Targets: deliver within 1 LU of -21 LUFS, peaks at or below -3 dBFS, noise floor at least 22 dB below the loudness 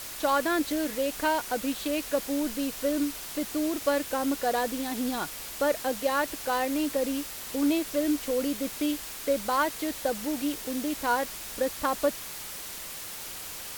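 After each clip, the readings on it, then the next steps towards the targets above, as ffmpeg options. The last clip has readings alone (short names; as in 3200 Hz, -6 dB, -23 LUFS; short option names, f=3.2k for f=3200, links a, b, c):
noise floor -40 dBFS; noise floor target -51 dBFS; loudness -29.0 LUFS; peak -13.0 dBFS; loudness target -21.0 LUFS
-> -af "afftdn=nr=11:nf=-40"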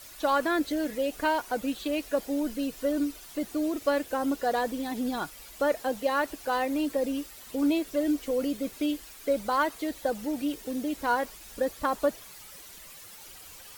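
noise floor -48 dBFS; noise floor target -52 dBFS
-> -af "afftdn=nr=6:nf=-48"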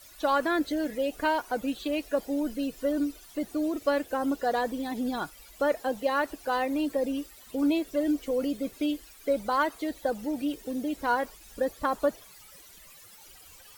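noise floor -52 dBFS; loudness -29.5 LUFS; peak -14.0 dBFS; loudness target -21.0 LUFS
-> -af "volume=8.5dB"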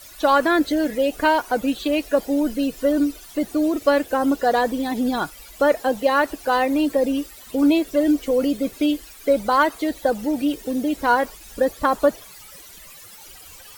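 loudness -21.0 LUFS; peak -5.5 dBFS; noise floor -43 dBFS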